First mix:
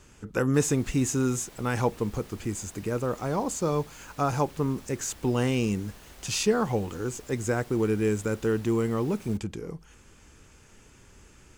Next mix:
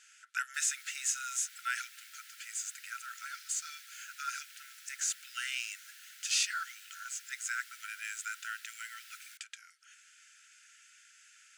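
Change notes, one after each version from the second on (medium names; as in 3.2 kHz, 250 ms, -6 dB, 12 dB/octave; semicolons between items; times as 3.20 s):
speech: add low-pass 11 kHz 24 dB/octave; master: add brick-wall FIR high-pass 1.3 kHz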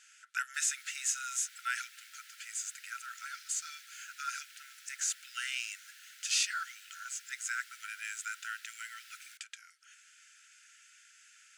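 background: add treble shelf 9.4 kHz -5.5 dB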